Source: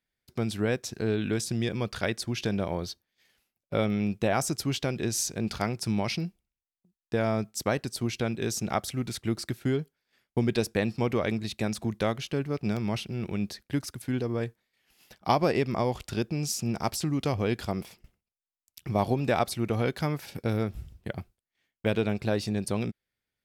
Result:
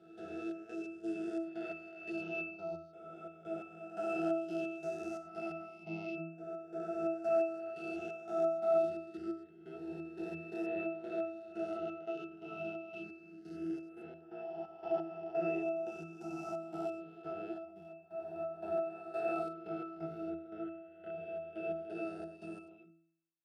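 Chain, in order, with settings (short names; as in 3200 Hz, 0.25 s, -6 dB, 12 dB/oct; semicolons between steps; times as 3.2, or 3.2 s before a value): spectral swells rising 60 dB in 2.83 s; high shelf 7300 Hz +6 dB; reverse echo 0.32 s -3.5 dB; step gate ".xx.x.xx.x." 87 bpm -12 dB; HPF 450 Hz 12 dB/oct; bell 1100 Hz -10.5 dB 0.42 oct; octave resonator E, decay 0.65 s; gain +9.5 dB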